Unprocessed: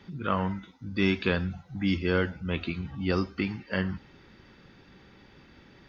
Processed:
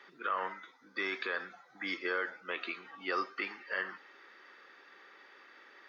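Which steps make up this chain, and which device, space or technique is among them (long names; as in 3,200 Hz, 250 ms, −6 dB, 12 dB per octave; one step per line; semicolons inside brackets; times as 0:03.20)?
laptop speaker (high-pass filter 390 Hz 24 dB per octave; parametric band 1,200 Hz +9 dB 0.32 octaves; parametric band 1,800 Hz +9 dB 0.54 octaves; brickwall limiter −19.5 dBFS, peak gain reduction 10.5 dB)
0:00.56–0:02.43: notch filter 2,800 Hz, Q 5.9
level −3.5 dB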